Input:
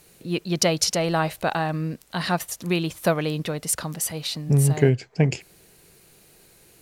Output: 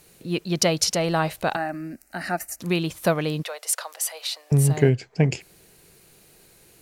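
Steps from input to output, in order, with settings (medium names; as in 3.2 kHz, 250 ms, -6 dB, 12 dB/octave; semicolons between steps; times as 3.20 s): 1.56–2.60 s: static phaser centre 690 Hz, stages 8; 3.43–4.52 s: steep high-pass 540 Hz 36 dB/octave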